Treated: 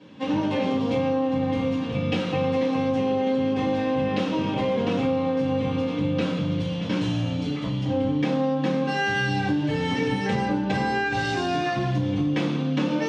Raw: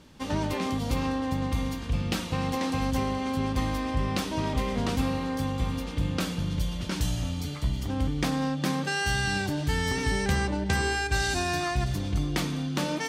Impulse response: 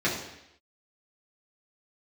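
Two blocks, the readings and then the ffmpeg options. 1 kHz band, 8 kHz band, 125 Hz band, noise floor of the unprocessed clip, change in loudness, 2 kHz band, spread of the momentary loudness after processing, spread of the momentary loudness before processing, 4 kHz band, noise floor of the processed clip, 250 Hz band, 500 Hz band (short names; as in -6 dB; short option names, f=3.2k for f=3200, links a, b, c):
+3.5 dB, under -10 dB, +1.0 dB, -35 dBFS, +4.0 dB, +1.5 dB, 3 LU, 4 LU, 0.0 dB, -28 dBFS, +6.0 dB, +8.5 dB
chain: -filter_complex "[0:a]lowshelf=f=67:g=-10.5[a];[1:a]atrim=start_sample=2205,asetrate=66150,aresample=44100[b];[a][b]afir=irnorm=-1:irlink=0,acompressor=threshold=-17dB:ratio=6,lowpass=3.8k,volume=-3dB"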